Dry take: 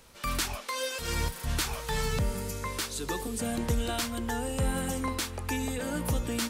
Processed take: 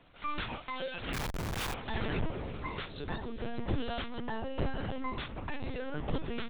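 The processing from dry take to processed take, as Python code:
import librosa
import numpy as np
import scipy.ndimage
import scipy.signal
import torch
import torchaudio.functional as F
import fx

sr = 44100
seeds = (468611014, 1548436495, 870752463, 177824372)

y = fx.lpc_vocoder(x, sr, seeds[0], excitation='pitch_kept', order=10)
y = fx.schmitt(y, sr, flips_db=-44.0, at=(1.13, 1.74))
y = F.gain(torch.from_numpy(y), -3.5).numpy()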